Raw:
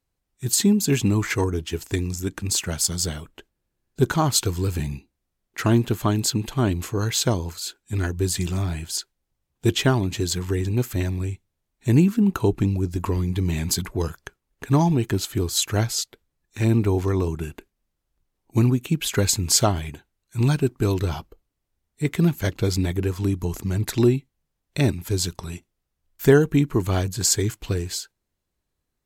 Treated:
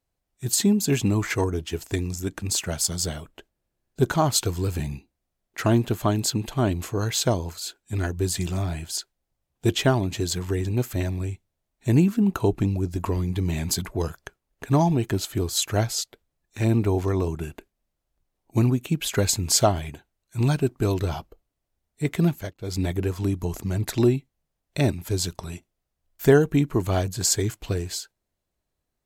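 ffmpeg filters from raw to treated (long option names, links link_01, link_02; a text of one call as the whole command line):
ffmpeg -i in.wav -filter_complex "[0:a]asplit=3[link_01][link_02][link_03];[link_01]atrim=end=22.54,asetpts=PTS-STARTPTS,afade=type=out:start_time=22.29:duration=0.25:silence=0.0749894[link_04];[link_02]atrim=start=22.54:end=22.58,asetpts=PTS-STARTPTS,volume=-22.5dB[link_05];[link_03]atrim=start=22.58,asetpts=PTS-STARTPTS,afade=type=in:duration=0.25:silence=0.0749894[link_06];[link_04][link_05][link_06]concat=n=3:v=0:a=1,equalizer=frequency=650:width_type=o:width=0.56:gain=6,volume=-2dB" out.wav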